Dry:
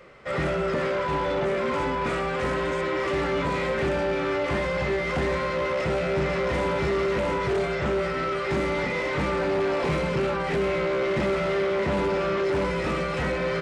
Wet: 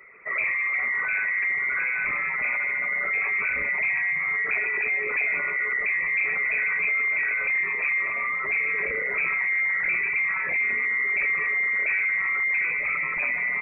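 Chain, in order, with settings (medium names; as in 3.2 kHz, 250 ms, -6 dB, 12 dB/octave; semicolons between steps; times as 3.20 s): resonances exaggerated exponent 2; frequency inversion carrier 2.5 kHz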